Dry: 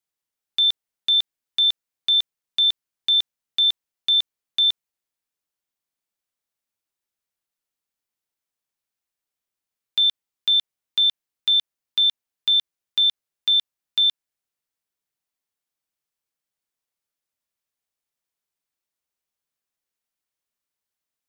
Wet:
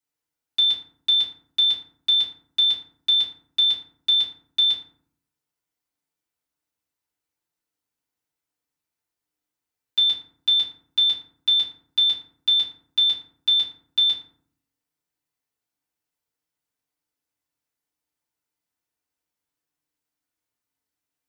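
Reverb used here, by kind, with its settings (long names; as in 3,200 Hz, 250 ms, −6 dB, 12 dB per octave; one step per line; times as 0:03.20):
feedback delay network reverb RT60 0.57 s, low-frequency decay 1.6×, high-frequency decay 0.5×, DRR −6 dB
level −5 dB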